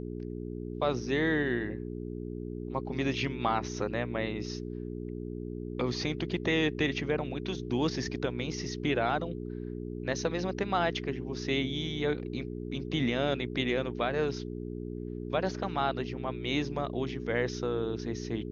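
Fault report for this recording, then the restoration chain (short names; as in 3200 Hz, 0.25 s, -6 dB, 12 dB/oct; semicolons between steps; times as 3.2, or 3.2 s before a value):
hum 60 Hz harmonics 7 -38 dBFS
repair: de-hum 60 Hz, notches 7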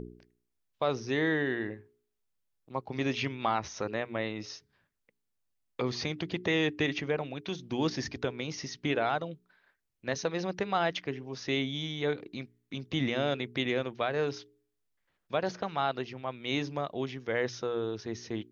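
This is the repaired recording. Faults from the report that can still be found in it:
none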